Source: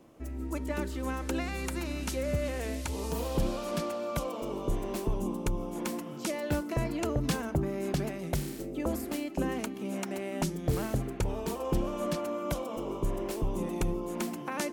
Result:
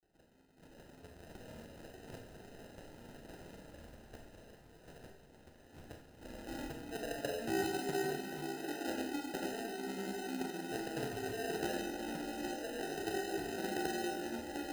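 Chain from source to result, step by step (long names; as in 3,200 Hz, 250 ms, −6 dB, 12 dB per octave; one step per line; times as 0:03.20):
phase distortion by the signal itself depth 0.15 ms
notch filter 580 Hz, Q 12
reversed playback
upward compression, threshold −37 dBFS
reversed playback
flanger 0.55 Hz, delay 6.1 ms, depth 9.1 ms, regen +50%
granular cloud
band-pass filter sweep 4,400 Hz → 390 Hz, 0:05.35–0:07.57
decimation without filtering 39×
on a send: echo with a time of its own for lows and highs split 540 Hz, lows 259 ms, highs 703 ms, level −13 dB
on the sum: four-comb reverb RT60 0.39 s, combs from 27 ms, DRR 3.5 dB
level +3.5 dB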